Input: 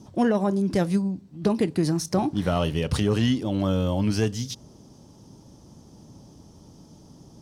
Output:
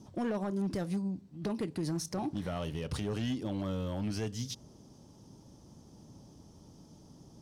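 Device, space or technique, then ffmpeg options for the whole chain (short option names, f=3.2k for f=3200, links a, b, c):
limiter into clipper: -af "alimiter=limit=-19dB:level=0:latency=1:release=210,asoftclip=type=hard:threshold=-22dB,volume=-6dB"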